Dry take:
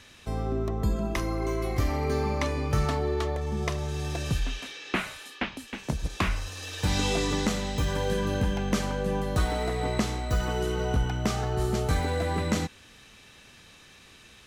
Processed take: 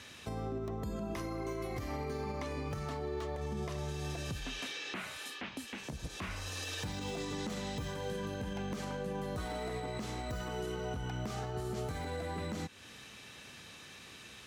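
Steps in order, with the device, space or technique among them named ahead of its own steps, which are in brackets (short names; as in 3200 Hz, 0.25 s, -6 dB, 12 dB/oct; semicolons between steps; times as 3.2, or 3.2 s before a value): podcast mastering chain (HPF 82 Hz 12 dB/oct; de-esser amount 85%; compressor 2.5:1, threshold -38 dBFS, peak gain reduction 11 dB; limiter -31 dBFS, peak gain reduction 9 dB; gain +1.5 dB; MP3 112 kbps 44100 Hz)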